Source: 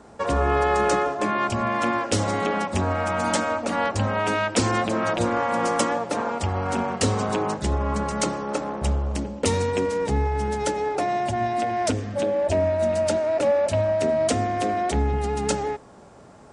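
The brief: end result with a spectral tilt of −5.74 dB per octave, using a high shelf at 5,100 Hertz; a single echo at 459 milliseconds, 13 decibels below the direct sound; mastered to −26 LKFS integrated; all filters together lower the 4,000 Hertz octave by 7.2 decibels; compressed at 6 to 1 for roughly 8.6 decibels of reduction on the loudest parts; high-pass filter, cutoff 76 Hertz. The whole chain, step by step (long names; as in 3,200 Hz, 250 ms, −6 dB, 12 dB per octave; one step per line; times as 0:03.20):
high-pass filter 76 Hz
parametric band 4,000 Hz −7 dB
high-shelf EQ 5,100 Hz −6.5 dB
downward compressor 6 to 1, threshold −27 dBFS
single-tap delay 459 ms −13 dB
level +4.5 dB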